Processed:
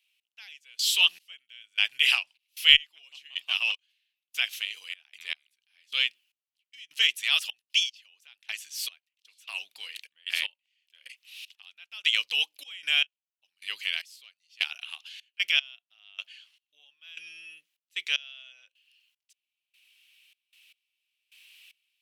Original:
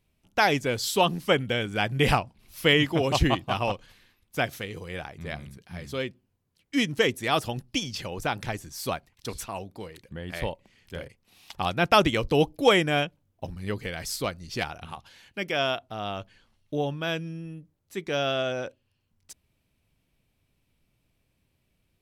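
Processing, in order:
camcorder AGC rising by 5.1 dB per second
high-pass with resonance 2,800 Hz, resonance Q 3.9
transient designer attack −3 dB, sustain +1 dB
gate pattern "x...xx...xxx." 76 BPM −24 dB
in parallel at −11.5 dB: comparator with hysteresis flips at −6 dBFS

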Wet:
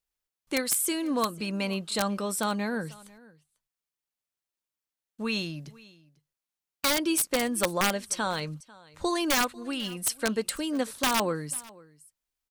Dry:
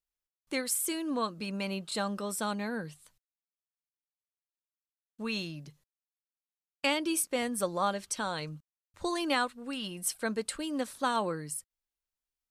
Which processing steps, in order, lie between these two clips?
wrap-around overflow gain 20.5 dB
single-tap delay 495 ms −22.5 dB
level +4.5 dB

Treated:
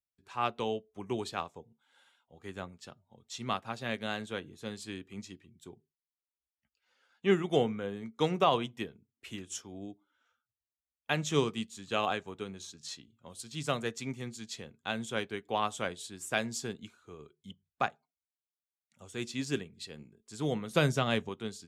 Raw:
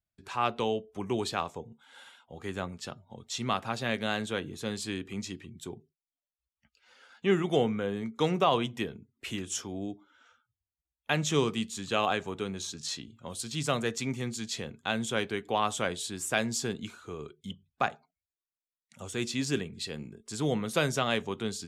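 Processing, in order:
0:20.70–0:21.29: low-shelf EQ 210 Hz +8.5 dB
expander for the loud parts 1.5 to 1, over −48 dBFS

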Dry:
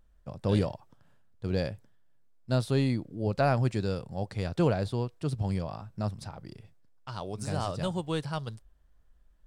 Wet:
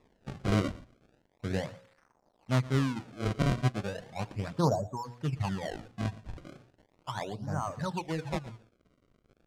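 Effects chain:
noise gate −47 dBFS, range −11 dB
mains-hum notches 60/120/180/240/300/360/420/480/540 Hz
reverb reduction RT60 1.5 s
octave-band graphic EQ 125/250/1,000 Hz +9/+7/+9 dB
surface crackle 210 per second −52 dBFS
mid-hump overdrive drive 25 dB, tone 6,300 Hz, clips at −47 dBFS
auto-filter low-pass sine 1.2 Hz 660–2,200 Hz
sample-and-hold swept by an LFO 29×, swing 160% 0.36 Hz
high-frequency loss of the air 54 metres
single-tap delay 117 ms −19 dB
highs frequency-modulated by the lows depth 0.17 ms
level −2.5 dB

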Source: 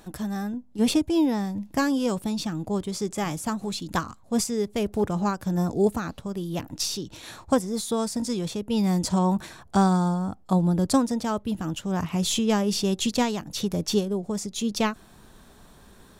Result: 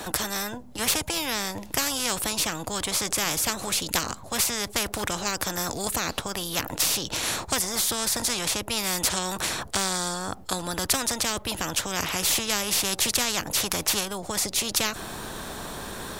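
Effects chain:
every bin compressed towards the loudest bin 4 to 1
level +7.5 dB

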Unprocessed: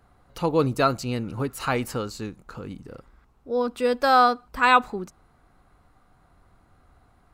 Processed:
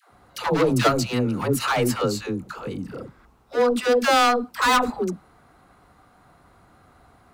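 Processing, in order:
high-pass filter 140 Hz 6 dB per octave
gain into a clipping stage and back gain 23 dB
all-pass dispersion lows, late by 111 ms, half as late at 500 Hz
level +7.5 dB

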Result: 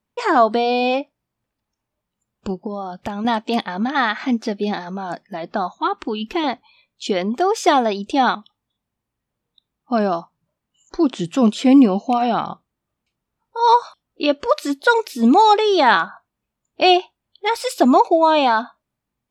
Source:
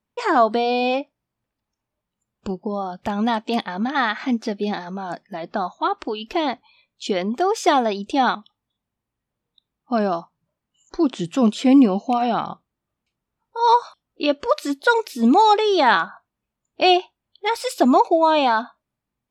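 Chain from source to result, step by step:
0:02.53–0:03.25: downward compressor, threshold −25 dBFS, peak gain reduction 7 dB
0:05.75–0:06.44: thirty-one-band graphic EQ 200 Hz +11 dB, 630 Hz −12 dB, 5,000 Hz −5 dB
level +2 dB

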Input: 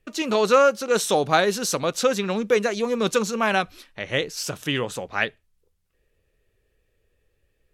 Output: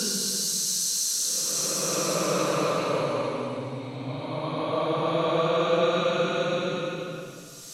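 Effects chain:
extreme stretch with random phases 26×, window 0.10 s, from 0:01.65
level −2 dB

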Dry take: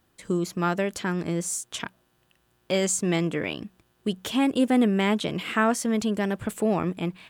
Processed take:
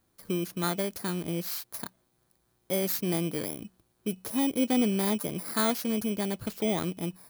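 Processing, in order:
samples in bit-reversed order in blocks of 16 samples
level −4.5 dB

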